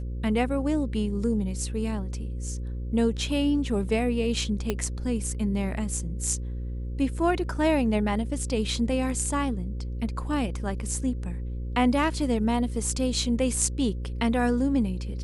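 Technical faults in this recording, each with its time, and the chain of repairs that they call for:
buzz 60 Hz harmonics 9 -32 dBFS
4.70 s: pop -12 dBFS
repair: de-click; de-hum 60 Hz, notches 9

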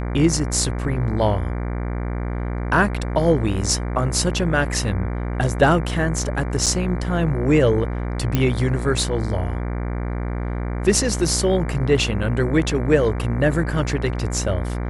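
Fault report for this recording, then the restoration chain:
buzz 60 Hz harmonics 39 -25 dBFS
6.66–6.67 s: dropout 6.2 ms
8.35 s: pop -6 dBFS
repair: de-click; de-hum 60 Hz, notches 39; interpolate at 6.66 s, 6.2 ms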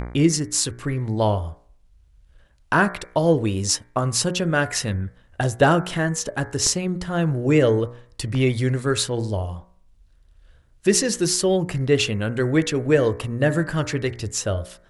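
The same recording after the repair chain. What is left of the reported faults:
nothing left

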